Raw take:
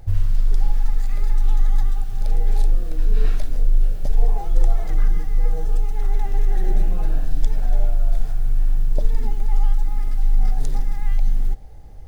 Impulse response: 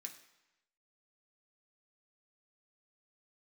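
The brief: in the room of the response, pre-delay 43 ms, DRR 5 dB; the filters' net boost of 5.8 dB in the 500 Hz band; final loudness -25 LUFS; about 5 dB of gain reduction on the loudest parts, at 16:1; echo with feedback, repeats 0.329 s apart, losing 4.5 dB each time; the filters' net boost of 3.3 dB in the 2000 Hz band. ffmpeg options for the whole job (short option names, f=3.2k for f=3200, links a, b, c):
-filter_complex "[0:a]equalizer=f=500:t=o:g=7,equalizer=f=2k:t=o:g=3.5,acompressor=threshold=-13dB:ratio=16,aecho=1:1:329|658|987|1316|1645|1974|2303|2632|2961:0.596|0.357|0.214|0.129|0.0772|0.0463|0.0278|0.0167|0.01,asplit=2[a][b];[1:a]atrim=start_sample=2205,adelay=43[c];[b][c]afir=irnorm=-1:irlink=0,volume=0dB[d];[a][d]amix=inputs=2:normalize=0,volume=2.5dB"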